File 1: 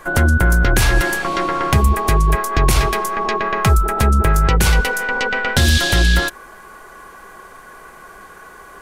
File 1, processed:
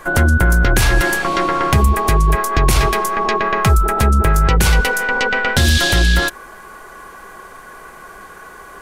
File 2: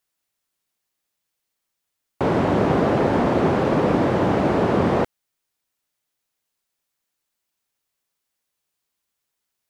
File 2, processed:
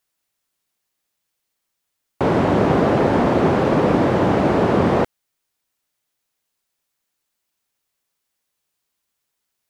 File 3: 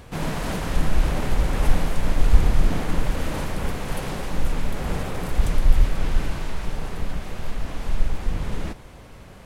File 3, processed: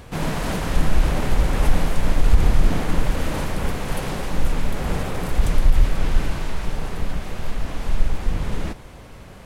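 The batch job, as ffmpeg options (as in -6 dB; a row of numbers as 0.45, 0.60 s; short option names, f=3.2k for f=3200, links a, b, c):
-af "alimiter=level_in=6dB:limit=-1dB:release=50:level=0:latency=1,volume=-3.5dB"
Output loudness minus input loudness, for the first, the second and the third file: +1.5, +2.5, +2.0 LU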